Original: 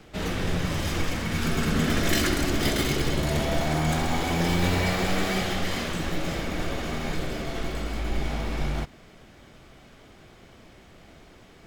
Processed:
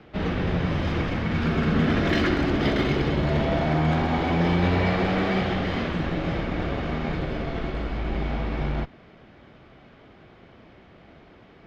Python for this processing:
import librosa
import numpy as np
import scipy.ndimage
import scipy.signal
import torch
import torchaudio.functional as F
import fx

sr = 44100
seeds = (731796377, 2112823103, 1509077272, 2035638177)

p1 = fx.highpass(x, sr, hz=79.0, slope=6)
p2 = fx.schmitt(p1, sr, flips_db=-26.5)
p3 = p1 + (p2 * 10.0 ** (-7.0 / 20.0))
p4 = fx.air_absorb(p3, sr, metres=280.0)
y = p4 * 10.0 ** (2.5 / 20.0)